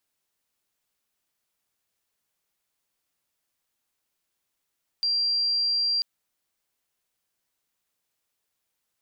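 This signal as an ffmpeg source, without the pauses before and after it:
-f lavfi -i "aevalsrc='0.0841*sin(2*PI*4740*t)':d=0.99:s=44100"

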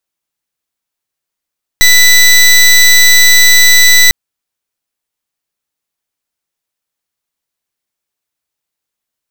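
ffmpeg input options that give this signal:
-f lavfi -i "aevalsrc='0.596*(2*lt(mod(1980*t,1),0.18)-1)':d=2.3:s=44100"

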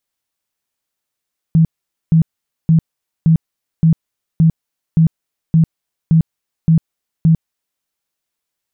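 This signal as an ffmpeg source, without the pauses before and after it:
-f lavfi -i "aevalsrc='0.473*sin(2*PI*162*mod(t,0.57))*lt(mod(t,0.57),16/162)':d=6.27:s=44100"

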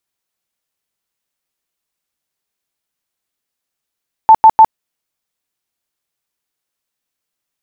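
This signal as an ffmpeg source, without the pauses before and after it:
-f lavfi -i "aevalsrc='0.891*sin(2*PI*883*mod(t,0.15))*lt(mod(t,0.15),50/883)':d=0.45:s=44100"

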